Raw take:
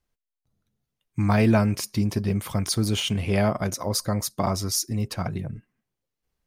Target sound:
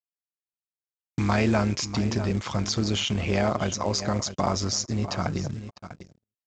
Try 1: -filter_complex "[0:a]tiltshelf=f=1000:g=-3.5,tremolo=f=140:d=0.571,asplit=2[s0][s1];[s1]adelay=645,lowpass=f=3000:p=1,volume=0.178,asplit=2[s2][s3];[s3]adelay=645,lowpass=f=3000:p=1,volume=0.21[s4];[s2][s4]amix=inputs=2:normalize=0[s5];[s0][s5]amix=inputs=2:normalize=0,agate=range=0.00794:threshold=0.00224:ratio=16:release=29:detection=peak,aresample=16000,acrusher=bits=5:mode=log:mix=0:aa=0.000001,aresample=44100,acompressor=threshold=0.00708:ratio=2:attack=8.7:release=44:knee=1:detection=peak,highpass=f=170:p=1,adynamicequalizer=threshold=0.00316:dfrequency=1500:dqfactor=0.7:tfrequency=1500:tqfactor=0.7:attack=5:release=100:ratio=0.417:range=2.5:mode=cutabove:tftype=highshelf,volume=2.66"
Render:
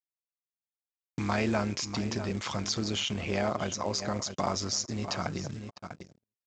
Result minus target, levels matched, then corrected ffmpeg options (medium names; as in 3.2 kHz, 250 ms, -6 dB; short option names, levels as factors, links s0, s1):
compression: peak gain reduction +4.5 dB; 125 Hz band -3.0 dB
-filter_complex "[0:a]tiltshelf=f=1000:g=-3.5,tremolo=f=140:d=0.571,asplit=2[s0][s1];[s1]adelay=645,lowpass=f=3000:p=1,volume=0.178,asplit=2[s2][s3];[s3]adelay=645,lowpass=f=3000:p=1,volume=0.21[s4];[s2][s4]amix=inputs=2:normalize=0[s5];[s0][s5]amix=inputs=2:normalize=0,agate=range=0.00794:threshold=0.00224:ratio=16:release=29:detection=peak,aresample=16000,acrusher=bits=5:mode=log:mix=0:aa=0.000001,aresample=44100,acompressor=threshold=0.02:ratio=2:attack=8.7:release=44:knee=1:detection=peak,highpass=f=58:p=1,adynamicequalizer=threshold=0.00316:dfrequency=1500:dqfactor=0.7:tfrequency=1500:tqfactor=0.7:attack=5:release=100:ratio=0.417:range=2.5:mode=cutabove:tftype=highshelf,volume=2.66"